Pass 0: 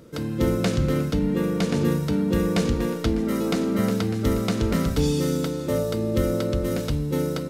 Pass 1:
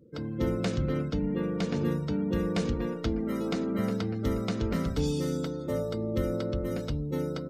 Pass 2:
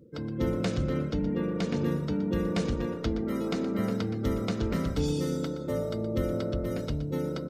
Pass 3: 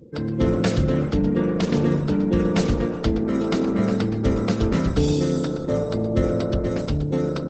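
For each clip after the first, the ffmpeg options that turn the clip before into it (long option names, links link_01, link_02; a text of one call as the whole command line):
ffmpeg -i in.wav -af "afftdn=noise_reduction=25:noise_floor=-42,volume=-6.5dB" out.wav
ffmpeg -i in.wav -filter_complex "[0:a]areverse,acompressor=mode=upward:threshold=-34dB:ratio=2.5,areverse,asplit=5[link_01][link_02][link_03][link_04][link_05];[link_02]adelay=120,afreqshift=37,volume=-13dB[link_06];[link_03]adelay=240,afreqshift=74,volume=-21.6dB[link_07];[link_04]adelay=360,afreqshift=111,volume=-30.3dB[link_08];[link_05]adelay=480,afreqshift=148,volume=-38.9dB[link_09];[link_01][link_06][link_07][link_08][link_09]amix=inputs=5:normalize=0" out.wav
ffmpeg -i in.wav -af "volume=8.5dB" -ar 48000 -c:a libopus -b:a 12k out.opus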